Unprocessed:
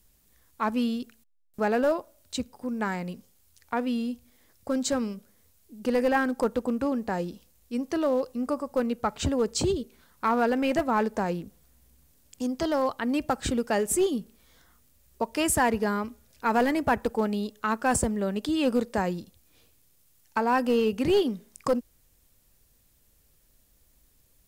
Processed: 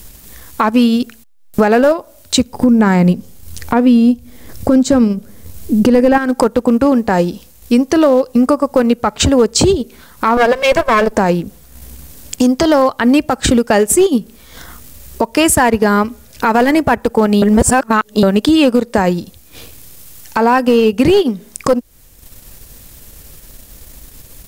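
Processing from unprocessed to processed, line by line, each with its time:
2.53–6.18 s: bass shelf 460 Hz +10.5 dB
10.37–11.13 s: comb filter that takes the minimum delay 1.8 ms
17.42–18.23 s: reverse
whole clip: transient shaper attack -1 dB, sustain -8 dB; compression 6:1, threshold -35 dBFS; loudness maximiser +28 dB; trim -1 dB

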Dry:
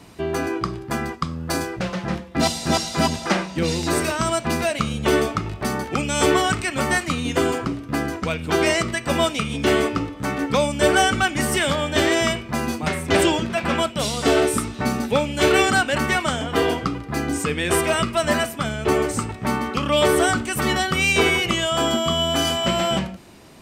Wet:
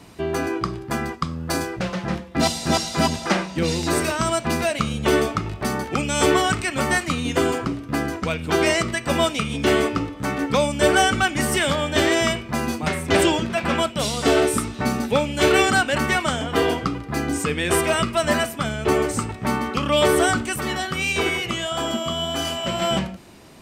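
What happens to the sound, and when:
20.56–22.82 s: flange 1.6 Hz, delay 0.5 ms, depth 8.5 ms, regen +74%

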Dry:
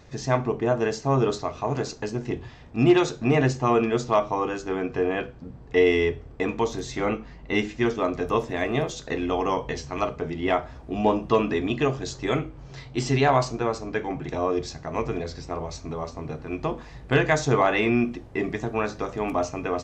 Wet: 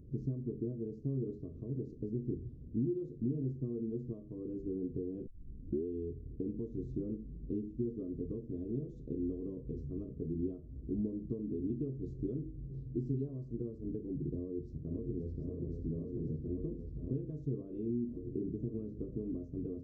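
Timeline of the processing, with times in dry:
5.27 s: tape start 0.60 s
14.35–15.40 s: echo throw 530 ms, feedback 85%, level -7.5 dB
whole clip: compression 6:1, threshold -30 dBFS; inverse Chebyshev low-pass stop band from 740 Hz, stop band 40 dB; upward compressor, threshold -56 dBFS; trim -1 dB

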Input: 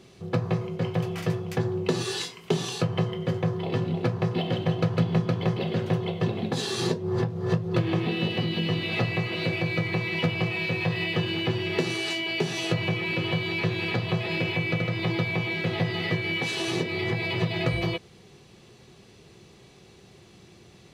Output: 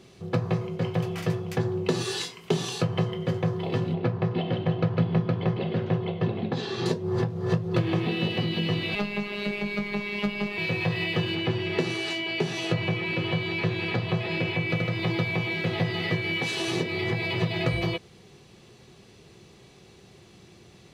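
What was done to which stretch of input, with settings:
3.94–6.86 s: distance through air 200 m
8.95–10.58 s: robot voice 205 Hz
11.35–14.70 s: treble shelf 5.7 kHz -7 dB

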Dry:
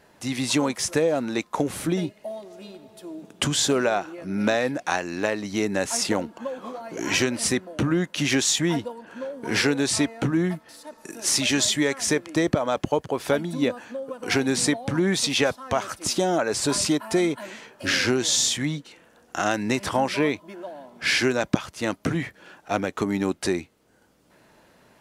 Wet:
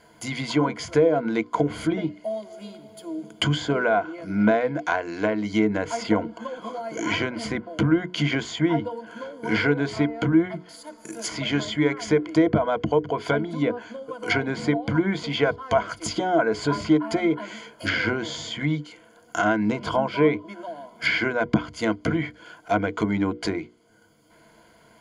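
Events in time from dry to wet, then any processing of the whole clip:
19.65–20.19 s: peaking EQ 1.9 kHz -12.5 dB 0.32 oct
whole clip: hum notches 60/120/180/240/300/360/420/480 Hz; low-pass that closes with the level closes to 2.1 kHz, closed at -20.5 dBFS; rippled EQ curve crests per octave 1.8, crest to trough 13 dB

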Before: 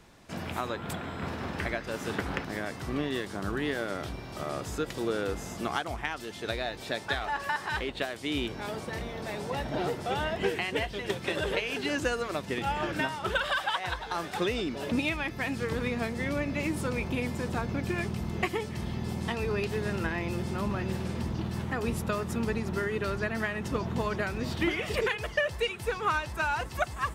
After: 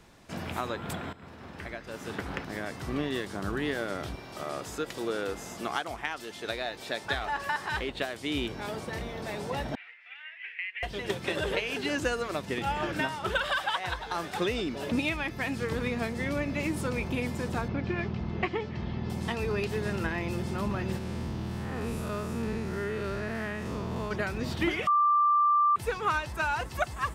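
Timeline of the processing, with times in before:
1.13–2.90 s: fade in, from -16 dB
4.15–7.04 s: bass shelf 170 Hz -10.5 dB
9.75–10.83 s: Butterworth band-pass 2.2 kHz, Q 2.9
17.68–19.10 s: Bessel low-pass 3.4 kHz, order 6
20.98–24.11 s: spectral blur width 163 ms
24.87–25.76 s: bleep 1.18 kHz -20 dBFS

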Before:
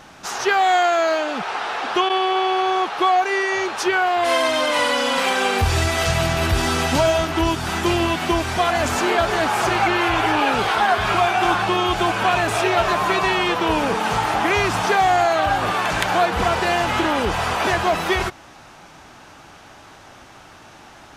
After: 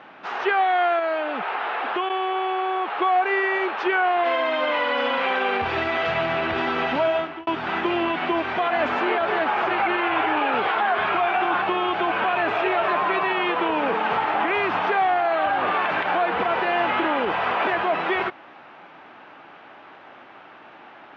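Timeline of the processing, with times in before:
0.99–3.02 s: compression 2.5:1, threshold -22 dBFS
7.06–7.47 s: fade out
whole clip: high-pass 270 Hz 12 dB/octave; peak limiter -13 dBFS; low-pass 2.9 kHz 24 dB/octave

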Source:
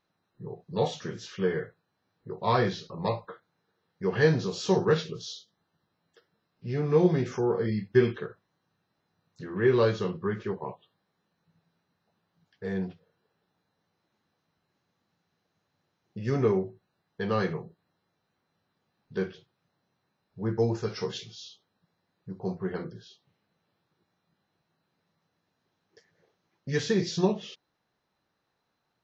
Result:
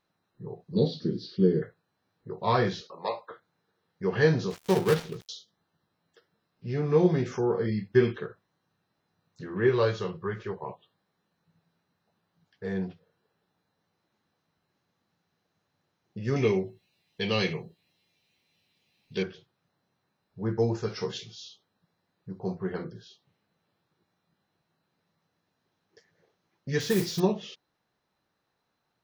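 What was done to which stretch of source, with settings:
0.75–1.62 s: FFT filter 100 Hz 0 dB, 170 Hz +8 dB, 310 Hz +12 dB, 460 Hz +1 dB, 880 Hz -18 dB, 1.5 kHz -15 dB, 2.7 kHz -15 dB, 4.5 kHz +8 dB, 6.7 kHz -23 dB
2.81–3.31 s: high-pass 480 Hz
4.50–5.29 s: dead-time distortion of 0.19 ms
9.69–10.70 s: peaking EQ 250 Hz -11 dB 0.69 oct
16.36–19.23 s: resonant high shelf 1.9 kHz +9 dB, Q 3
26.80–27.20 s: modulation noise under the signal 14 dB

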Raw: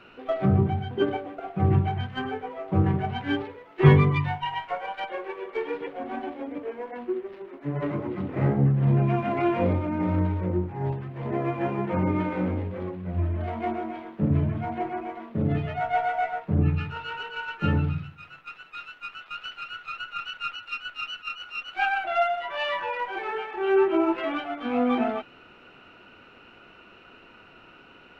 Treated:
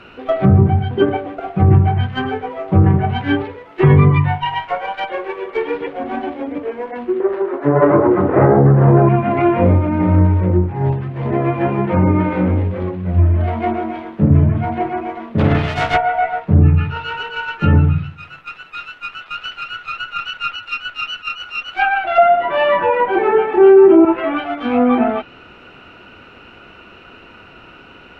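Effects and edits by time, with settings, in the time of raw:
7.20–9.09 s: high-order bell 750 Hz +12 dB 2.7 oct
15.38–15.96 s: spectral contrast reduction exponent 0.52
22.18–24.05 s: peaking EQ 250 Hz +14.5 dB 2.6 oct
whole clip: low-pass that closes with the level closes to 2.2 kHz, closed at -20.5 dBFS; peaking EQ 62 Hz +6 dB 1.8 oct; loudness maximiser +10.5 dB; trim -1 dB

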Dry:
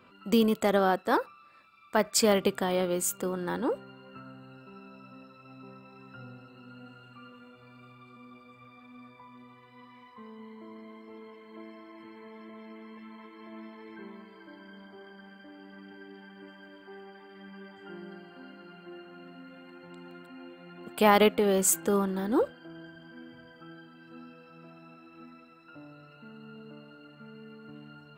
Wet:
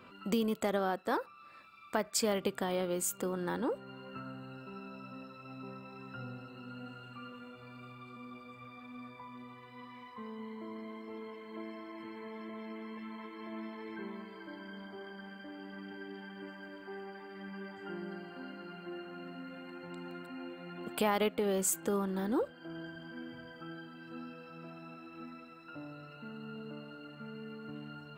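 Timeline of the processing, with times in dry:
16.48–20.76 s: band-stop 3.3 kHz, Q 8.4
whole clip: compression 2:1, threshold -39 dBFS; trim +2.5 dB

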